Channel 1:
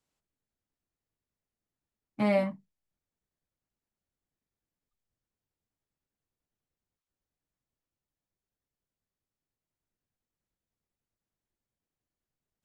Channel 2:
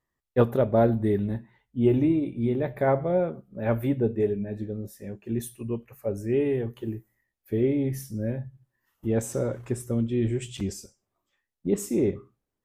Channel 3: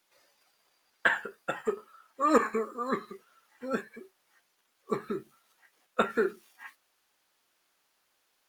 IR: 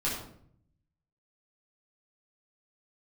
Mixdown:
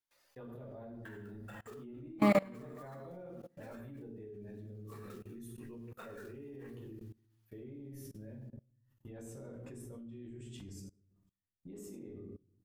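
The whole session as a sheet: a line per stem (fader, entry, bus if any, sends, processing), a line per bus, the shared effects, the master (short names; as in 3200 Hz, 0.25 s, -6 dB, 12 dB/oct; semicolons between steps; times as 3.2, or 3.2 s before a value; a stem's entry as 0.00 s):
0.0 dB, 0.00 s, no bus, no send, echo send -6.5 dB, dry
-12.5 dB, 0.00 s, bus A, send -7.5 dB, no echo send, dry
-2.5 dB, 0.00 s, bus A, send -21 dB, no echo send, short-mantissa float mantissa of 2-bit
bus A: 0.0 dB, low shelf 460 Hz -7.5 dB; compressor 2:1, threshold -47 dBFS, peak gain reduction 13.5 dB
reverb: on, RT60 0.60 s, pre-delay 6 ms
echo: feedback echo 72 ms, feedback 40%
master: high shelf 9800 Hz +3 dB; level quantiser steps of 24 dB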